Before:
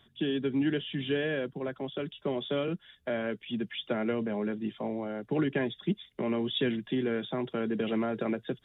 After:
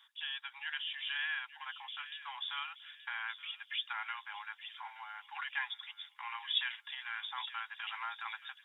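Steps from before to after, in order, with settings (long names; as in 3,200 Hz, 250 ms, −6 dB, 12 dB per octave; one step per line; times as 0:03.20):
Butterworth high-pass 840 Hz 96 dB per octave
on a send: delay with a high-pass on its return 875 ms, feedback 35%, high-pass 2,000 Hz, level −11 dB
on the sum: level +1 dB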